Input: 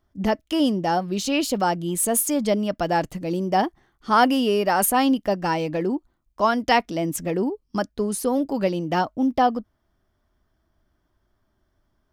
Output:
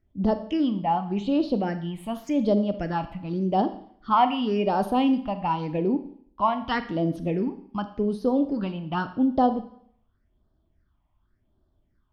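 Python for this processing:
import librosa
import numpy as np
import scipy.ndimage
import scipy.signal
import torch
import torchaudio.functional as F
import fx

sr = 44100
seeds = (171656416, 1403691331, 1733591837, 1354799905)

y = fx.air_absorb(x, sr, metres=240.0)
y = fx.phaser_stages(y, sr, stages=6, low_hz=400.0, high_hz=2200.0, hz=0.88, feedback_pct=30)
y = fx.high_shelf(y, sr, hz=5500.0, db=-10.5, at=(0.57, 1.82))
y = fx.rev_schroeder(y, sr, rt60_s=0.61, comb_ms=28, drr_db=10.0)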